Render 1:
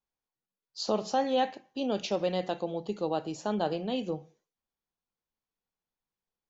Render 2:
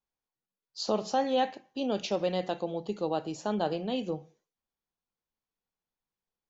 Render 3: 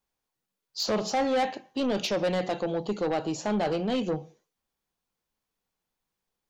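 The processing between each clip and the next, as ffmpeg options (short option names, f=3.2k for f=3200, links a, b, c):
-af anull
-af "asoftclip=type=tanh:threshold=-29dB,volume=7.5dB"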